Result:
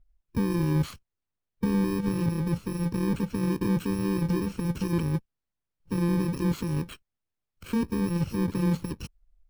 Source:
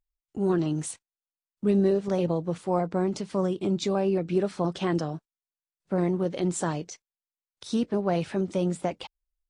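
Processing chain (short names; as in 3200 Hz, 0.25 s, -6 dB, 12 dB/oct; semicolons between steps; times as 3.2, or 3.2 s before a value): FFT order left unsorted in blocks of 64 samples; harmonic-percussive split harmonic -5 dB; in parallel at -1.5 dB: negative-ratio compressor -36 dBFS, ratio -1; on the sum: limiter -22.5 dBFS, peak gain reduction 8 dB; RIAA curve playback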